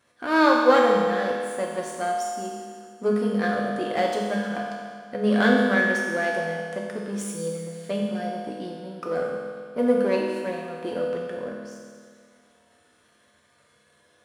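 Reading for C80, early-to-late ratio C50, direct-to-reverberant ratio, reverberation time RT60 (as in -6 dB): 2.0 dB, 0.5 dB, -3.0 dB, 2.0 s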